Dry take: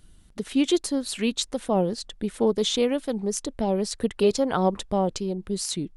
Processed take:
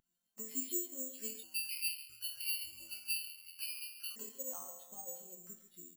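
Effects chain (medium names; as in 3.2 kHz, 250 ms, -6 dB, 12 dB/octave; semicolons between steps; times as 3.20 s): high-pass 790 Hz 6 dB/octave; compression 10:1, threshold -40 dBFS, peak gain reduction 18.5 dB; distance through air 52 m; chord resonator F3 major, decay 0.69 s; feedback delay 139 ms, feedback 55%, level -7.5 dB; 1.43–4.16 s: frequency inversion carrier 3.2 kHz; careless resampling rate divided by 6×, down filtered, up zero stuff; spectral contrast expander 1.5:1; trim +16 dB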